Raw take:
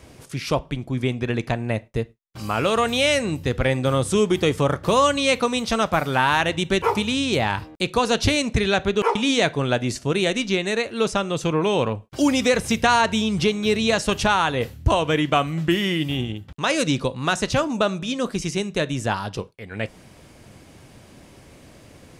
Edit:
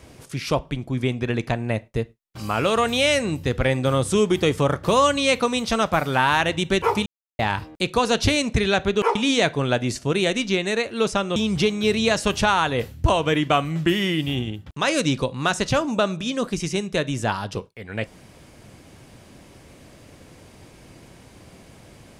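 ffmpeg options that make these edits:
ffmpeg -i in.wav -filter_complex "[0:a]asplit=4[link_01][link_02][link_03][link_04];[link_01]atrim=end=7.06,asetpts=PTS-STARTPTS,afade=type=out:start_time=7.056:duration=0.004:curve=hsin[link_05];[link_02]atrim=start=7.06:end=7.39,asetpts=PTS-STARTPTS,volume=0[link_06];[link_03]atrim=start=7.39:end=11.362,asetpts=PTS-STARTPTS,afade=type=in:duration=0.004:curve=hsin[link_07];[link_04]atrim=start=13.178[link_08];[link_05][link_06][link_07]concat=n=3:v=0:a=1[link_09];[link_09][link_08]acrossfade=duration=0.004:curve1=hsin:curve2=hsin" out.wav

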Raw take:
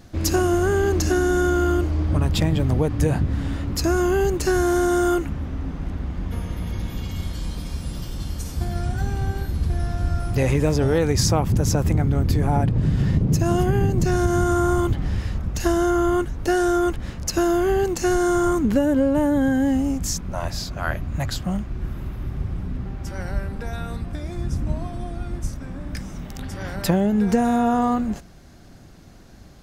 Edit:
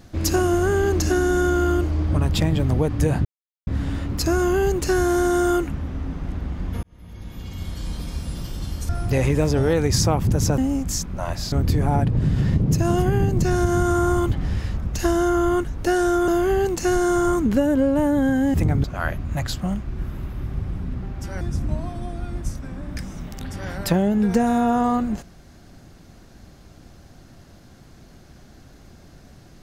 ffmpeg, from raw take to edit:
ffmpeg -i in.wav -filter_complex "[0:a]asplit=10[link_01][link_02][link_03][link_04][link_05][link_06][link_07][link_08][link_09][link_10];[link_01]atrim=end=3.25,asetpts=PTS-STARTPTS,afade=type=out:start_time=3.246:duration=0.004:curve=hsin,apad=pad_dur=0.42[link_11];[link_02]atrim=start=3.25:end=6.41,asetpts=PTS-STARTPTS,afade=type=in:duration=0.004:curve=hsin,afade=type=out:start_time=3.156:duration=0.004:curve=hsin[link_12];[link_03]atrim=start=6.41:end=8.472,asetpts=PTS-STARTPTS,afade=type=in:duration=1.13[link_13];[link_04]atrim=start=10.138:end=11.832[link_14];[link_05]atrim=start=19.728:end=20.672[link_15];[link_06]atrim=start=12.128:end=16.892[link_16];[link_07]atrim=start=17.468:end=19.732[link_17];[link_08]atrim=start=11.828:end=12.132[link_18];[link_09]atrim=start=20.668:end=23.242[link_19];[link_10]atrim=start=24.388[link_20];[link_11][link_12][link_13]concat=n=3:v=0:a=1[link_21];[link_21][link_14]acrossfade=duration=0.004:curve1=hsin:curve2=hsin[link_22];[link_22][link_15]acrossfade=duration=0.004:curve1=hsin:curve2=hsin[link_23];[link_23][link_16]acrossfade=duration=0.004:curve1=hsin:curve2=hsin[link_24];[link_24][link_17]acrossfade=duration=0.004:curve1=hsin:curve2=hsin[link_25];[link_25][link_18]acrossfade=duration=0.004:curve1=hsin:curve2=hsin[link_26];[link_26][link_19]acrossfade=duration=0.004:curve1=hsin:curve2=hsin[link_27];[link_27][link_20]acrossfade=duration=0.004:curve1=hsin:curve2=hsin" out.wav

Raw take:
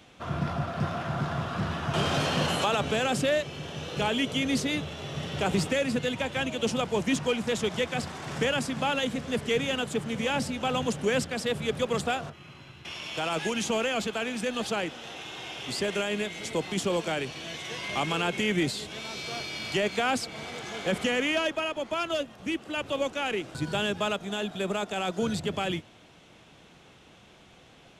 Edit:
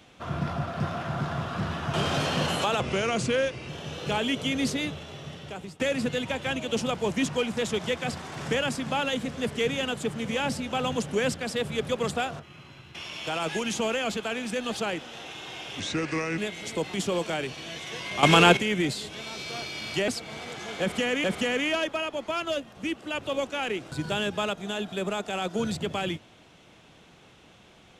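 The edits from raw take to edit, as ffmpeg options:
ffmpeg -i in.wav -filter_complex "[0:a]asplit=10[link_01][link_02][link_03][link_04][link_05][link_06][link_07][link_08][link_09][link_10];[link_01]atrim=end=2.804[link_11];[link_02]atrim=start=2.8:end=3.59,asetpts=PTS-STARTPTS,asetrate=39249,aresample=44100[link_12];[link_03]atrim=start=3.586:end=5.7,asetpts=PTS-STARTPTS,afade=type=out:start_time=1.034:duration=1.08:silence=0.0707946[link_13];[link_04]atrim=start=5.7:end=15.704,asetpts=PTS-STARTPTS,afade=type=in:duration=0.004:curve=hsin:silence=0.0707946[link_14];[link_05]atrim=start=15.7:end=16.16,asetpts=PTS-STARTPTS,asetrate=34839,aresample=44100,atrim=end_sample=25678,asetpts=PTS-STARTPTS[link_15];[link_06]atrim=start=16.156:end=18.012[link_16];[link_07]atrim=start=18.008:end=18.352,asetpts=PTS-STARTPTS,volume=11.5dB[link_17];[link_08]atrim=start=18.348:end=19.862[link_18];[link_09]atrim=start=20.138:end=21.302[link_19];[link_10]atrim=start=20.868[link_20];[link_11][link_12]acrossfade=duration=0.004:curve1=hsin:curve2=hsin[link_21];[link_13][link_14]concat=n=2:v=0:a=1[link_22];[link_21][link_22]acrossfade=duration=0.004:curve1=hsin:curve2=hsin[link_23];[link_23][link_15]acrossfade=duration=0.004:curve1=hsin:curve2=hsin[link_24];[link_24][link_16]acrossfade=duration=0.004:curve1=hsin:curve2=hsin[link_25];[link_25][link_17]acrossfade=duration=0.004:curve1=hsin:curve2=hsin[link_26];[link_26][link_18]acrossfade=duration=0.004:curve1=hsin:curve2=hsin[link_27];[link_27][link_19]acrossfade=duration=0.004:curve1=hsin:curve2=hsin[link_28];[link_28][link_20]acrossfade=duration=0.004:curve1=hsin:curve2=hsin" out.wav

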